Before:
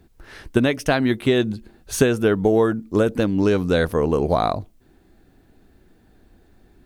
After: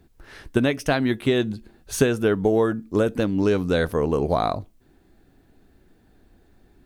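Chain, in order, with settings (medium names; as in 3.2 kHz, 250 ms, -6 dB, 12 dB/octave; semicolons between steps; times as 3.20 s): feedback comb 140 Hz, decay 0.22 s, harmonics all, mix 30%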